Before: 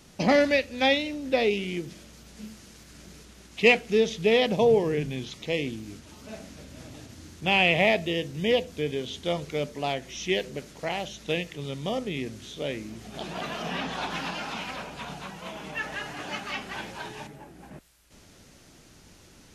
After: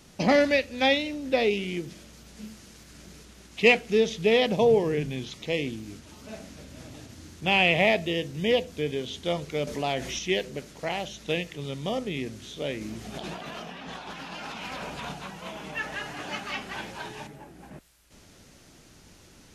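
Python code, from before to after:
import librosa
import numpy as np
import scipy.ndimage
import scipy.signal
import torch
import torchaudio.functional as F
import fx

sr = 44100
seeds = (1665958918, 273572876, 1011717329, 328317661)

y = fx.env_flatten(x, sr, amount_pct=50, at=(9.67, 10.19))
y = fx.over_compress(y, sr, threshold_db=-38.0, ratio=-1.0, at=(12.81, 15.12))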